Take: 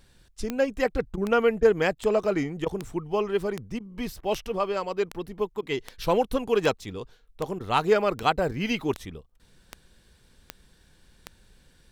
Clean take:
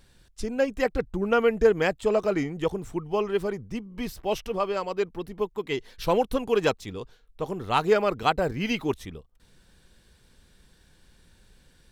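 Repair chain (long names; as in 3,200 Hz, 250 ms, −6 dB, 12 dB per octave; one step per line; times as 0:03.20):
click removal
repair the gap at 0:01.16/0:01.61/0:01.95/0:02.65/0:03.79/0:04.21/0:05.61/0:07.59, 12 ms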